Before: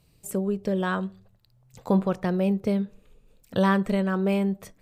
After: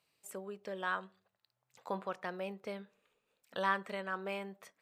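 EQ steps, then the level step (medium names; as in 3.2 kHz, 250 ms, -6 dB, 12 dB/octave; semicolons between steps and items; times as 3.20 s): high-pass 1.4 kHz 12 dB/octave; tilt EQ -4.5 dB/octave; treble shelf 9.1 kHz +4 dB; 0.0 dB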